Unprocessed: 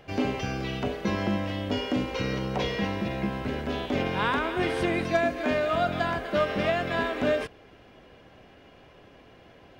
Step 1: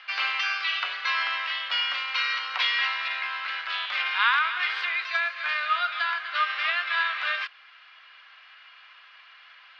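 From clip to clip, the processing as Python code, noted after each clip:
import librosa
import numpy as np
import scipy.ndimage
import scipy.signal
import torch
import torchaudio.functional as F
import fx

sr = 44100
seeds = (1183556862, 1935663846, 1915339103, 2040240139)

y = scipy.signal.sosfilt(scipy.signal.cheby1(3, 1.0, [1200.0, 4600.0], 'bandpass', fs=sr, output='sos'), x)
y = fx.rider(y, sr, range_db=10, speed_s=2.0)
y = y * librosa.db_to_amplitude(8.5)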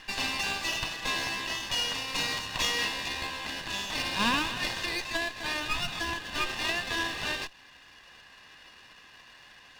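y = fx.lower_of_two(x, sr, delay_ms=1.1)
y = fx.dynamic_eq(y, sr, hz=1600.0, q=1.4, threshold_db=-41.0, ratio=4.0, max_db=-6)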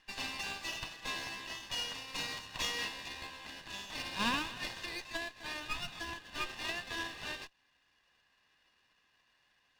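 y = fx.upward_expand(x, sr, threshold_db=-52.0, expansion=1.5)
y = y * librosa.db_to_amplitude(-5.5)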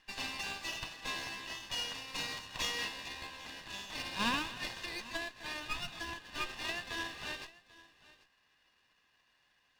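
y = x + 10.0 ** (-20.0 / 20.0) * np.pad(x, (int(790 * sr / 1000.0), 0))[:len(x)]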